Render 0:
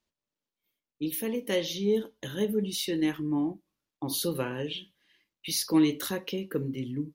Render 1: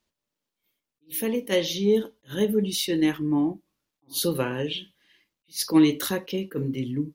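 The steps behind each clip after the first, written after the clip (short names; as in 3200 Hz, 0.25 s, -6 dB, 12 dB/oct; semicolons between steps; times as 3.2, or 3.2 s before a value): attack slew limiter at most 340 dB/s; gain +5 dB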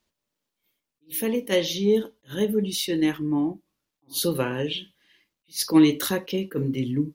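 vocal rider 2 s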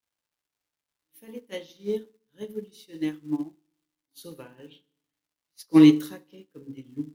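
crackle 310/s -33 dBFS; FDN reverb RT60 0.81 s, low-frequency decay 1.4×, high-frequency decay 0.75×, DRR 7 dB; upward expander 2.5:1, over -35 dBFS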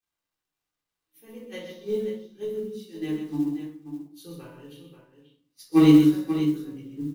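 shoebox room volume 560 m³, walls furnished, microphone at 3.7 m; modulation noise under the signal 33 dB; on a send: tapped delay 0.128/0.535 s -8/-10 dB; on the sum: gain -6 dB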